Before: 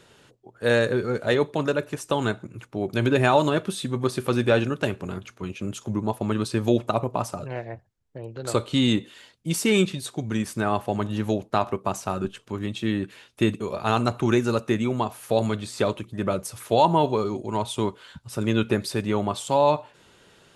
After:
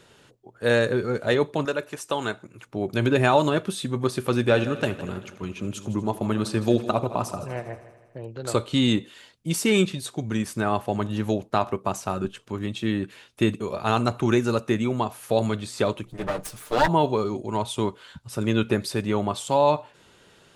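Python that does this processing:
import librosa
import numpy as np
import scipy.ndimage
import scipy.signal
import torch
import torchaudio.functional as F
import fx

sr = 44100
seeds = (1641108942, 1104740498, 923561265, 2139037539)

y = fx.low_shelf(x, sr, hz=280.0, db=-11.0, at=(1.65, 2.67))
y = fx.echo_heads(y, sr, ms=80, heads='first and second', feedback_pct=53, wet_db=-17, at=(4.49, 8.25), fade=0.02)
y = fx.lower_of_two(y, sr, delay_ms=6.6, at=(16.05, 16.87), fade=0.02)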